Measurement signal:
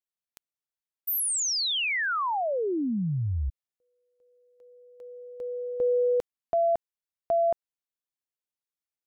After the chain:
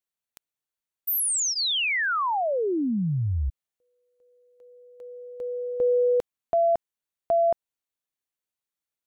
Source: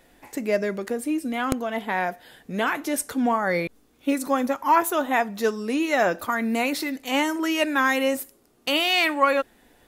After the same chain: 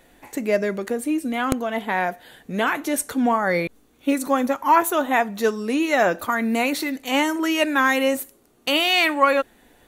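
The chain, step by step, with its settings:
notch filter 5,100 Hz, Q 10
level +2.5 dB

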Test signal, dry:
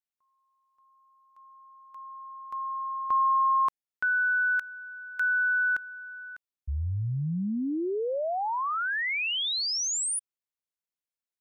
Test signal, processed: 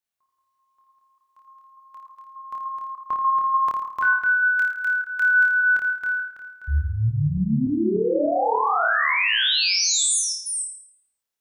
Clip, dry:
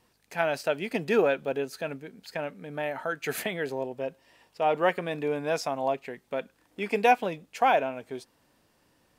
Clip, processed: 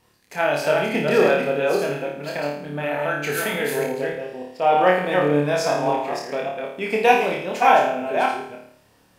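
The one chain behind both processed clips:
delay that plays each chunk backwards 295 ms, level −3.5 dB
flutter between parallel walls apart 4.7 metres, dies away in 0.61 s
level +3.5 dB

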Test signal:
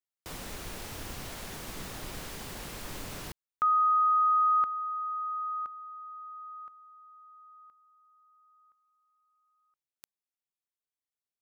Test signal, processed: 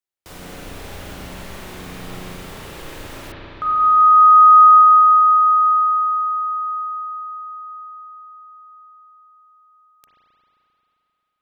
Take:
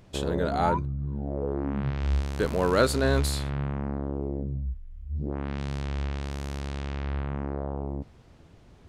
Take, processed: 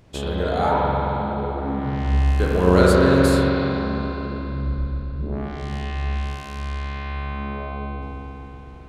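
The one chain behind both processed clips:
spring reverb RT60 3.9 s, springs 33/44 ms, chirp 30 ms, DRR −5 dB
level +1 dB

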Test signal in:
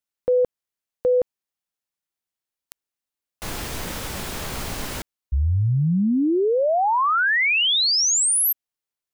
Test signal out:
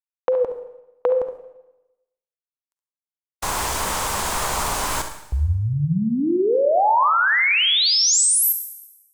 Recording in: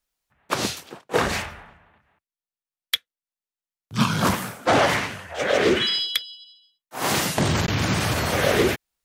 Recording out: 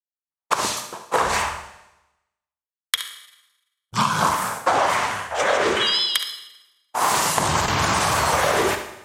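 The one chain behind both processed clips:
noise gate −39 dBFS, range −46 dB
octave-band graphic EQ 125/250/1,000/8,000 Hz −4/−4/+12/+8 dB
pitch vibrato 3.7 Hz 59 cents
downward compressor, threshold −19 dBFS
flutter between parallel walls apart 11.9 metres, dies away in 0.38 s
four-comb reverb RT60 0.96 s, DRR 9 dB
level +2 dB

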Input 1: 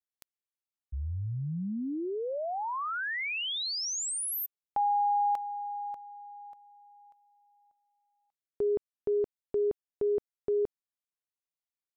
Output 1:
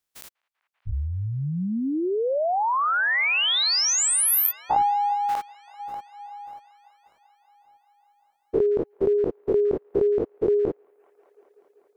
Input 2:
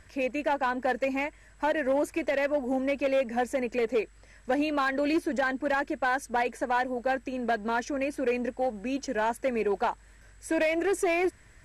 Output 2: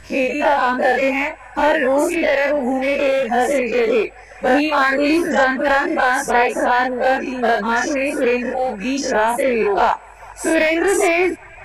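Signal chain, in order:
every bin's largest magnitude spread in time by 120 ms
delay with a band-pass on its return 194 ms, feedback 80%, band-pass 1,400 Hz, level −16 dB
reverb reduction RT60 0.98 s
level +8 dB

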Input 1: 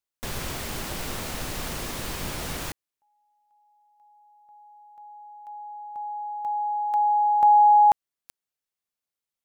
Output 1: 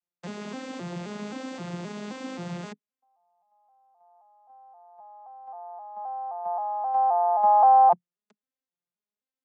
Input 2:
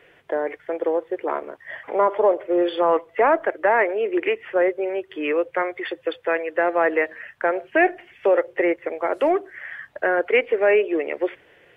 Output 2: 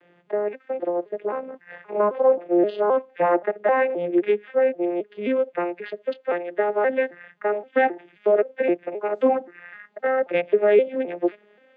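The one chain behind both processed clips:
vocoder with an arpeggio as carrier minor triad, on F3, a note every 263 ms

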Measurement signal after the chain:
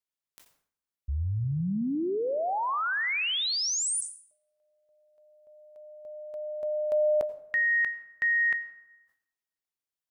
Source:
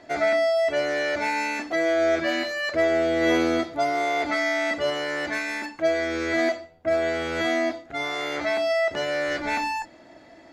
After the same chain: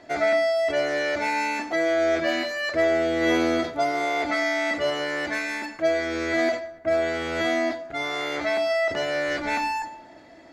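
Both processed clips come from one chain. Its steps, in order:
dense smooth reverb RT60 1.1 s, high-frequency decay 0.5×, pre-delay 75 ms, DRR 16.5 dB
level that may fall only so fast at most 120 dB per second

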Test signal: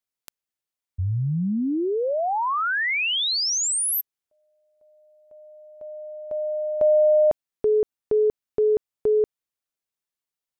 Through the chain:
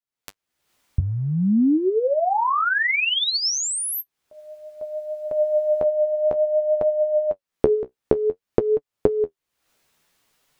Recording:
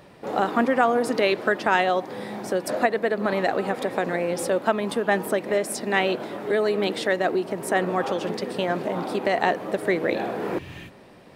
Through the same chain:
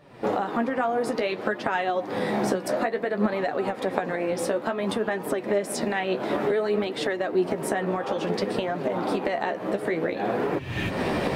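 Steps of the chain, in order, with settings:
camcorder AGC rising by 60 dB per second, up to +33 dB
high-shelf EQ 5,300 Hz −7 dB
flanger 0.57 Hz, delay 6.6 ms, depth 9.5 ms, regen +37%
level −2.5 dB

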